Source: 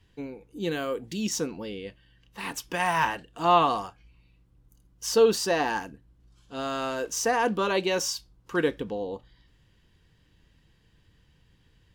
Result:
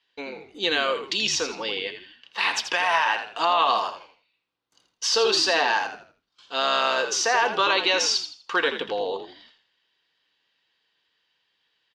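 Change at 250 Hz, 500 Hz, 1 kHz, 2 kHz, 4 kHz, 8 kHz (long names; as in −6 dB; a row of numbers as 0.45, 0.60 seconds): −5.5, 0.0, +3.5, +8.0, +11.5, +4.0 decibels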